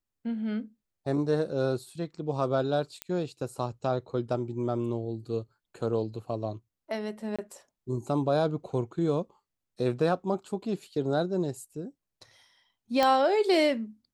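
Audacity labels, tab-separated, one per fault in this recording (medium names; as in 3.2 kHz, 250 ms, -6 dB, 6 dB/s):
3.020000	3.020000	pop -16 dBFS
7.360000	7.390000	dropout 26 ms
13.030000	13.030000	pop -11 dBFS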